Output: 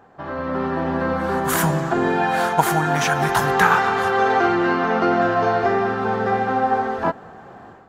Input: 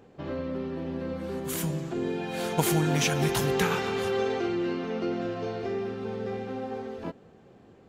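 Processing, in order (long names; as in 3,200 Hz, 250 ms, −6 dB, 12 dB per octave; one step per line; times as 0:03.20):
flat-topped bell 1,100 Hz +12.5 dB
automatic gain control gain up to 10.5 dB
level −1 dB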